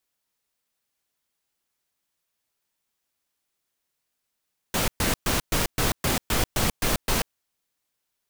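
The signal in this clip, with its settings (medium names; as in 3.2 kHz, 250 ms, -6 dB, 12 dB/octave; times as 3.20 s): noise bursts pink, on 0.14 s, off 0.12 s, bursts 10, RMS -23 dBFS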